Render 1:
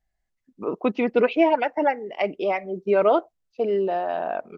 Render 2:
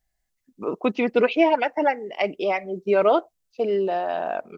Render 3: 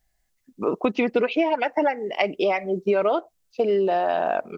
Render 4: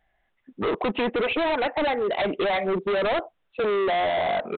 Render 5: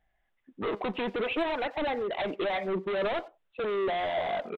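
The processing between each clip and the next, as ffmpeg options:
ffmpeg -i in.wav -af "highshelf=frequency=4000:gain=10" out.wav
ffmpeg -i in.wav -af "acompressor=threshold=-23dB:ratio=10,volume=5.5dB" out.wav
ffmpeg -i in.wav -filter_complex "[0:a]asplit=2[link_01][link_02];[link_02]highpass=frequency=720:poles=1,volume=14dB,asoftclip=type=tanh:threshold=-6dB[link_03];[link_01][link_03]amix=inputs=2:normalize=0,lowpass=frequency=1300:poles=1,volume=-6dB,aresample=8000,asoftclip=type=hard:threshold=-26dB,aresample=44100,volume=4dB" out.wav
ffmpeg -i in.wav -filter_complex "[0:a]flanger=delay=0.1:depth=5.3:regen=81:speed=0.52:shape=sinusoidal,asplit=2[link_01][link_02];[link_02]adelay=90,highpass=300,lowpass=3400,asoftclip=type=hard:threshold=-29dB,volume=-18dB[link_03];[link_01][link_03]amix=inputs=2:normalize=0,volume=-2dB" out.wav

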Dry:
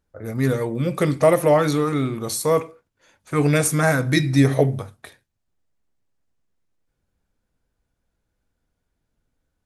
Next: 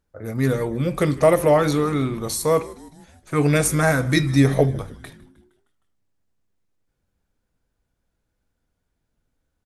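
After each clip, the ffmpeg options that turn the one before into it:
ffmpeg -i in.wav -filter_complex "[0:a]asplit=6[link_01][link_02][link_03][link_04][link_05][link_06];[link_02]adelay=155,afreqshift=-99,volume=-21dB[link_07];[link_03]adelay=310,afreqshift=-198,volume=-25.3dB[link_08];[link_04]adelay=465,afreqshift=-297,volume=-29.6dB[link_09];[link_05]adelay=620,afreqshift=-396,volume=-33.9dB[link_10];[link_06]adelay=775,afreqshift=-495,volume=-38.2dB[link_11];[link_01][link_07][link_08][link_09][link_10][link_11]amix=inputs=6:normalize=0" out.wav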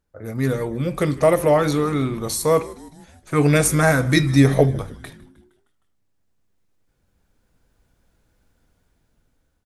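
ffmpeg -i in.wav -af "dynaudnorm=framelen=870:gausssize=5:maxgain=14.5dB,volume=-1dB" out.wav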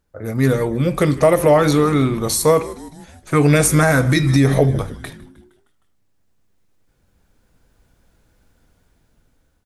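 ffmpeg -i in.wav -af "alimiter=limit=-9.5dB:level=0:latency=1:release=114,volume=5.5dB" out.wav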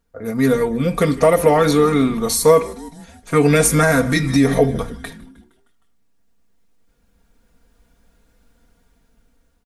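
ffmpeg -i in.wav -af "aecho=1:1:4.3:0.63,volume=-1dB" out.wav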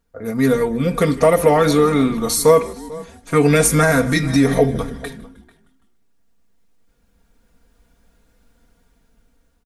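ffmpeg -i in.wav -filter_complex "[0:a]asplit=2[link_01][link_02];[link_02]adelay=443.1,volume=-20dB,highshelf=frequency=4000:gain=-9.97[link_03];[link_01][link_03]amix=inputs=2:normalize=0" out.wav

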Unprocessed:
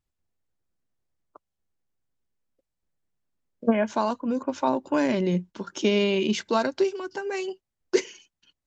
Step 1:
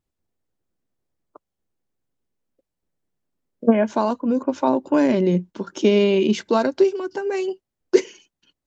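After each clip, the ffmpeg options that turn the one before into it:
ffmpeg -i in.wav -af "equalizer=frequency=340:width=0.51:gain=7" out.wav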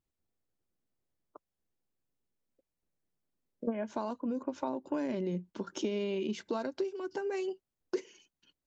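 ffmpeg -i in.wav -af "acompressor=threshold=-26dB:ratio=4,volume=-6.5dB" out.wav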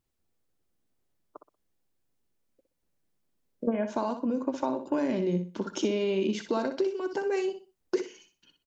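ffmpeg -i in.wav -af "aecho=1:1:62|124|186:0.355|0.0887|0.0222,volume=5.5dB" out.wav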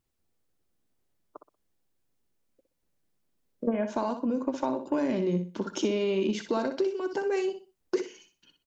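ffmpeg -i in.wav -af "aeval=exprs='0.178*(cos(1*acos(clip(val(0)/0.178,-1,1)))-cos(1*PI/2))+0.00355*(cos(5*acos(clip(val(0)/0.178,-1,1)))-cos(5*PI/2))':channel_layout=same" out.wav

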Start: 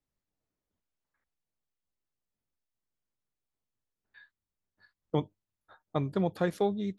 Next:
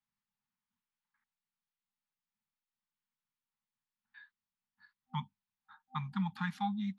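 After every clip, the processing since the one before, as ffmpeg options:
ffmpeg -i in.wav -filter_complex "[0:a]afftfilt=real='re*(1-between(b*sr/4096,250,780))':imag='im*(1-between(b*sr/4096,250,780))':win_size=4096:overlap=0.75,acrossover=split=160 4700:gain=0.141 1 0.224[link_01][link_02][link_03];[link_01][link_02][link_03]amix=inputs=3:normalize=0" out.wav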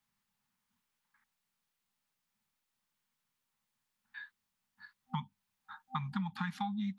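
ffmpeg -i in.wav -af "acompressor=threshold=-42dB:ratio=12,volume=9dB" out.wav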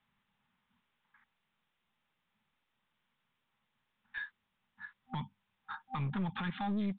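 ffmpeg -i in.wav -af "alimiter=level_in=10dB:limit=-24dB:level=0:latency=1:release=18,volume=-10dB,aresample=8000,aeval=exprs='clip(val(0),-1,0.00841)':channel_layout=same,aresample=44100,volume=7dB" out.wav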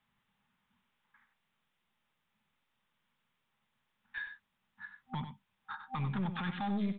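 ffmpeg -i in.wav -af "aecho=1:1:95:0.355" out.wav

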